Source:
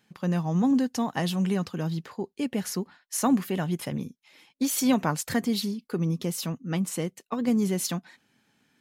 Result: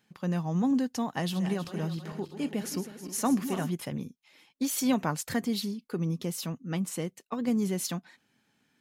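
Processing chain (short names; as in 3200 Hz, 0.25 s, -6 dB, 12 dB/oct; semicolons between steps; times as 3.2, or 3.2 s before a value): 1.17–3.71 regenerating reverse delay 0.159 s, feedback 70%, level -10.5 dB; gain -3.5 dB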